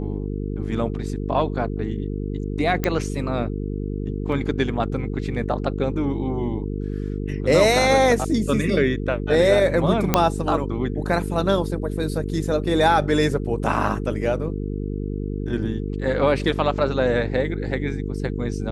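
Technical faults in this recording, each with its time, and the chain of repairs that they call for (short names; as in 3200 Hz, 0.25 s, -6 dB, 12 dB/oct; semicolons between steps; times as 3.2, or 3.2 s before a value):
buzz 50 Hz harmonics 9 -27 dBFS
2.84 pop -8 dBFS
4.32 gap 3.6 ms
10.14 pop -1 dBFS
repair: de-click; de-hum 50 Hz, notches 9; interpolate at 4.32, 3.6 ms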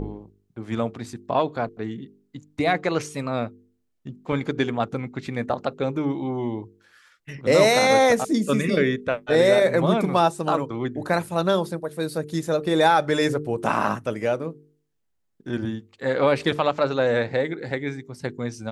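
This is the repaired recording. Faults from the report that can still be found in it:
none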